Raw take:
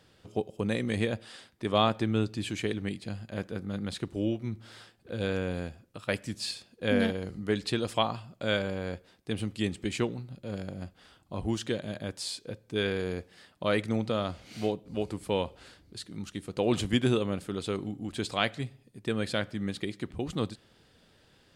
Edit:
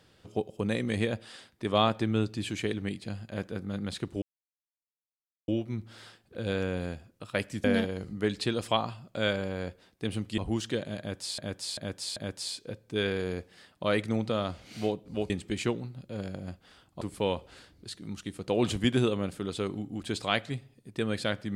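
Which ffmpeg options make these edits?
-filter_complex "[0:a]asplit=9[a][b][c][d][e][f][g][h][i];[a]atrim=end=4.22,asetpts=PTS-STARTPTS,afade=t=out:st=4.216:d=0.004:c=hsin,apad=pad_dur=1.26[j];[b]atrim=start=4.22:end=6.382,asetpts=PTS-STARTPTS,afade=t=in:d=0.004:c=hsin[k];[c]atrim=start=6.898:end=9.642[l];[d]atrim=start=11.348:end=12.352[m];[e]atrim=start=11.958:end=12.352[n];[f]atrim=start=11.958:end=12.352[o];[g]atrim=start=11.958:end=15.102[p];[h]atrim=start=9.638:end=11.352[q];[i]atrim=start=15.098[r];[j][k]concat=n=2:v=0:a=1[s];[s][l]acrossfade=d=0.004:c1=hsin:c2=hsin[t];[t][m]acrossfade=d=0.004:c1=hsin:c2=hsin[u];[u][n]acrossfade=d=0.004:c1=hsin:c2=hsin[v];[v][o]acrossfade=d=0.004:c1=hsin:c2=hsin[w];[w][p]acrossfade=d=0.004:c1=hsin:c2=hsin[x];[x][q]acrossfade=d=0.004:c1=hsin:c2=hsin[y];[y][r]acrossfade=d=0.004:c1=hsin:c2=hsin"

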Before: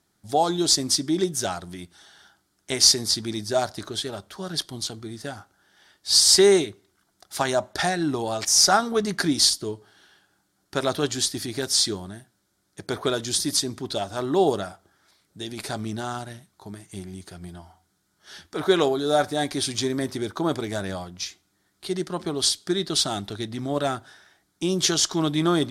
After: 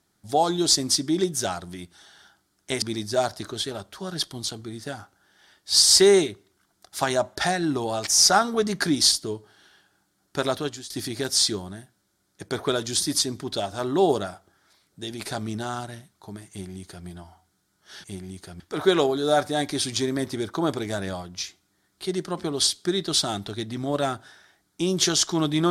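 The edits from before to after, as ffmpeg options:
-filter_complex "[0:a]asplit=5[a][b][c][d][e];[a]atrim=end=2.822[f];[b]atrim=start=3.198:end=11.28,asetpts=PTS-STARTPTS,afade=t=out:st=7.642:d=0.44:silence=0.0707946[g];[c]atrim=start=11.28:end=18.422,asetpts=PTS-STARTPTS,afade=t=in:d=0.004:c=hsin:silence=0.0707946[h];[d]atrim=start=16.878:end=17.442[i];[e]atrim=start=18.418[j];[g][h]concat=n=2:v=0:a=1[k];[f][k]acrossfade=d=0.004:c1=hsin:c2=hsin[l];[l][i]acrossfade=d=0.004:c1=hsin:c2=hsin[m];[m][j]acrossfade=d=0.004:c1=hsin:c2=hsin"

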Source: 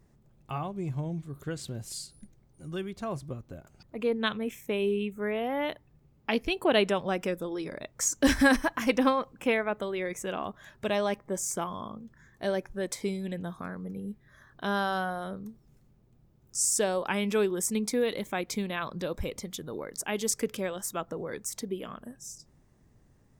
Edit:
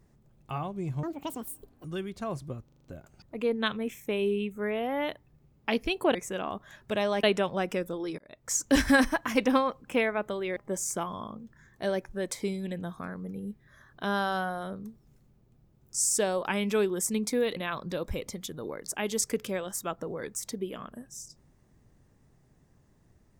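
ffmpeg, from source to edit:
-filter_complex "[0:a]asplit=13[a][b][c][d][e][f][g][h][i][j][k][l][m];[a]atrim=end=1.034[n];[b]atrim=start=1.03:end=2.65,asetpts=PTS-STARTPTS,asetrate=87759,aresample=44100[o];[c]atrim=start=2.646:end=3.492[p];[d]atrim=start=3.448:end=3.492[q];[e]atrim=start=3.448:end=3.492[r];[f]atrim=start=3.448:end=3.492[s];[g]atrim=start=3.448:end=3.492[t];[h]atrim=start=3.448:end=6.752[u];[i]atrim=start=10.078:end=11.172[v];[j]atrim=start=6.748:end=7.7,asetpts=PTS-STARTPTS,afade=t=out:st=0.948:d=0.004:c=hsin[w];[k]atrim=start=7.7:end=10.082,asetpts=PTS-STARTPTS,afade=t=in:d=0.41[x];[l]atrim=start=11.168:end=18.172[y];[m]atrim=start=18.658[z];[n][o]acrossfade=d=0.004:c1=hsin:c2=hsin[aa];[aa][p]acrossfade=d=0.004:c1=hsin:c2=hsin[ab];[ab][q]acrossfade=d=0.004:c1=hsin:c2=hsin[ac];[ac][r]acrossfade=d=0.004:c1=hsin:c2=hsin[ad];[ad][s]acrossfade=d=0.004:c1=hsin:c2=hsin[ae];[ae][t]acrossfade=d=0.004:c1=hsin:c2=hsin[af];[af][u]acrossfade=d=0.004:c1=hsin:c2=hsin[ag];[ag][v]acrossfade=d=0.004:c1=hsin:c2=hsin[ah];[w][x]concat=n=2:v=0:a=1[ai];[ah][ai]acrossfade=d=0.004:c1=hsin:c2=hsin[aj];[aj][y]acrossfade=d=0.004:c1=hsin:c2=hsin[ak];[ak][z]acrossfade=d=0.004:c1=hsin:c2=hsin"

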